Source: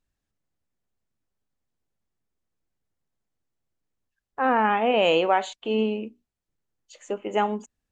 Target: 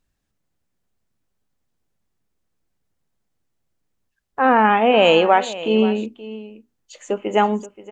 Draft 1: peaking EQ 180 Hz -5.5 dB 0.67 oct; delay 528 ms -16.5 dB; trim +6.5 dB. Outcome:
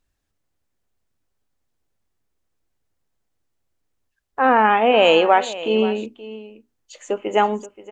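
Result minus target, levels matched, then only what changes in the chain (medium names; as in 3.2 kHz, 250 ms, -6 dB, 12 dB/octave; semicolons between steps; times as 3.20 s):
250 Hz band -3.5 dB
change: peaking EQ 180 Hz +2 dB 0.67 oct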